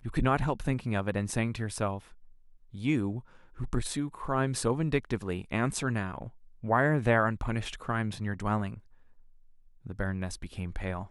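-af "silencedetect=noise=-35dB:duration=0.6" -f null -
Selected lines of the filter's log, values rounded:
silence_start: 1.99
silence_end: 2.74 | silence_duration: 0.75
silence_start: 8.74
silence_end: 9.87 | silence_duration: 1.12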